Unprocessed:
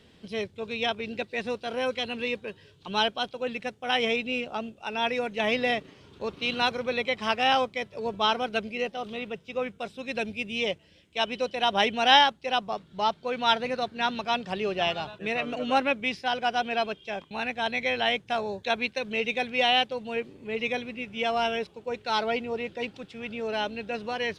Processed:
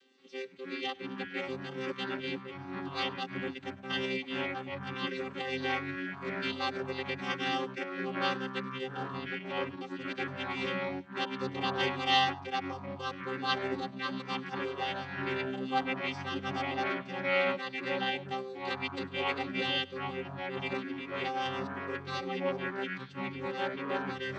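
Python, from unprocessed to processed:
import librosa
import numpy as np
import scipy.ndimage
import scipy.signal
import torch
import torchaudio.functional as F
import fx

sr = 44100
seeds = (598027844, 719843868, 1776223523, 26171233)

p1 = fx.chord_vocoder(x, sr, chord='bare fifth', root=60)
p2 = fx.tilt_shelf(p1, sr, db=-8.0, hz=1400.0)
p3 = p2 + fx.echo_single(p2, sr, ms=100, db=-23.0, dry=0)
p4 = fx.echo_pitch(p3, sr, ms=173, semitones=-6, count=3, db_per_echo=-3.0)
y = p4 * 10.0 ** (-4.5 / 20.0)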